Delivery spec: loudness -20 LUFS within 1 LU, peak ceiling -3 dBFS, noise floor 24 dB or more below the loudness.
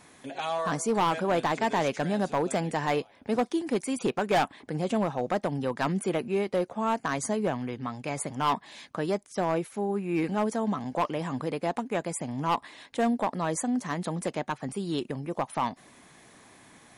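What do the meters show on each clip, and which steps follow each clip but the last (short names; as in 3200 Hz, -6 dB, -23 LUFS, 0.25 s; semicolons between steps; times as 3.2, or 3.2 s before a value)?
clipped 1.4%; flat tops at -19.5 dBFS; loudness -29.5 LUFS; peak -19.5 dBFS; loudness target -20.0 LUFS
-> clip repair -19.5 dBFS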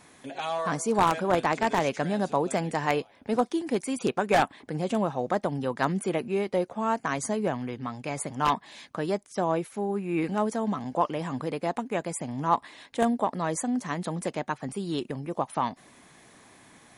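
clipped 0.0%; loudness -28.5 LUFS; peak -10.5 dBFS; loudness target -20.0 LUFS
-> gain +8.5 dB; limiter -3 dBFS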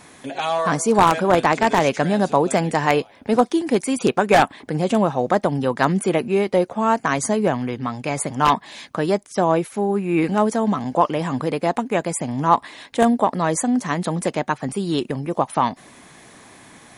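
loudness -20.5 LUFS; peak -3.0 dBFS; noise floor -47 dBFS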